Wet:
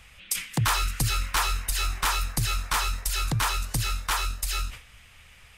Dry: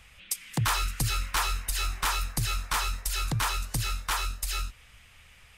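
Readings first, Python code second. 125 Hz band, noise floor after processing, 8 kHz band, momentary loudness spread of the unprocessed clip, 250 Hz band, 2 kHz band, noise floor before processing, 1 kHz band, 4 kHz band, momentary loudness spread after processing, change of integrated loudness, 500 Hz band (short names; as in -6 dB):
+2.5 dB, -53 dBFS, +2.5 dB, 5 LU, +2.5 dB, +2.5 dB, -55 dBFS, +2.5 dB, +2.5 dB, 5 LU, +2.5 dB, +2.5 dB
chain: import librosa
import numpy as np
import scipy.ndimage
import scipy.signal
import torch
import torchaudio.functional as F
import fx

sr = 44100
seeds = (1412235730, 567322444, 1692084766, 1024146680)

y = fx.sustainer(x, sr, db_per_s=130.0)
y = y * librosa.db_to_amplitude(2.5)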